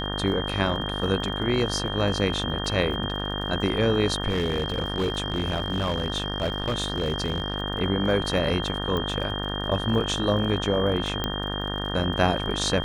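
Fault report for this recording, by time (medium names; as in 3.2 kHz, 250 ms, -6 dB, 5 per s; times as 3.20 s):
buzz 50 Hz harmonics 37 -31 dBFS
crackle 39 per s -35 dBFS
whine 3.2 kHz -32 dBFS
4.29–7.54 s: clipped -20.5 dBFS
8.97 s: pop -16 dBFS
11.24 s: pop -12 dBFS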